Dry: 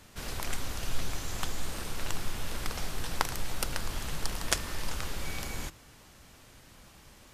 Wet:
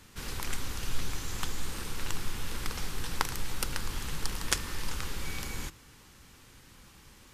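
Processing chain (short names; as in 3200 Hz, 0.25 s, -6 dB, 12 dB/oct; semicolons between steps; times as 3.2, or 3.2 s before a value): bell 650 Hz -11 dB 0.36 oct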